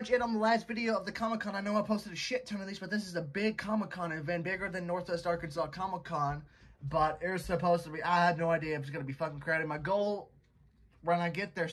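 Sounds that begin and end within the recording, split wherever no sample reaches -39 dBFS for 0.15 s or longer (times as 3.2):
6.84–10.21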